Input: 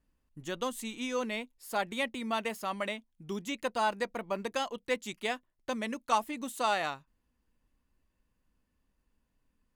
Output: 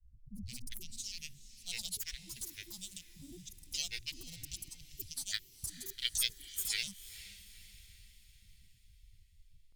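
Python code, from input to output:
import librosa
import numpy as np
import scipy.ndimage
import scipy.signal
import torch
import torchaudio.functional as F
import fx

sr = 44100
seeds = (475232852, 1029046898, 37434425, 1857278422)

p1 = fx.wiener(x, sr, points=25)
p2 = scipy.signal.sosfilt(scipy.signal.cheby2(4, 50, [250.0, 2300.0], 'bandstop', fs=sr, output='sos'), p1)
p3 = fx.granulator(p2, sr, seeds[0], grain_ms=100.0, per_s=20.0, spray_ms=100.0, spread_st=12)
p4 = p3 + fx.echo_diffused(p3, sr, ms=468, feedback_pct=49, wet_db=-15.0, dry=0)
y = F.gain(torch.from_numpy(p4), 17.0).numpy()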